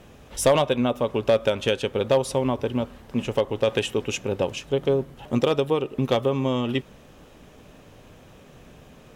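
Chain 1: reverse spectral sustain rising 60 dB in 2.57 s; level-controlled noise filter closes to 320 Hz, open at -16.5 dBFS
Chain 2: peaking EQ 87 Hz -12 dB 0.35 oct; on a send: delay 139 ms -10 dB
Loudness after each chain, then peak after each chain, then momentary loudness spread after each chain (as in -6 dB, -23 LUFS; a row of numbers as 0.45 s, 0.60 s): -19.0 LUFS, -24.0 LUFS; -3.5 dBFS, -8.0 dBFS; 6 LU, 7 LU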